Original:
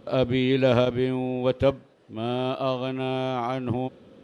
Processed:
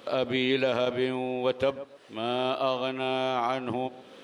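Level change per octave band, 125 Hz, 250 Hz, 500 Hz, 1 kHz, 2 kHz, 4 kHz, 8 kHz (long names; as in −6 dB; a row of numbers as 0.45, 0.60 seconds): −12.0 dB, −5.5 dB, −3.0 dB, +0.5 dB, +1.5 dB, +1.5 dB, can't be measured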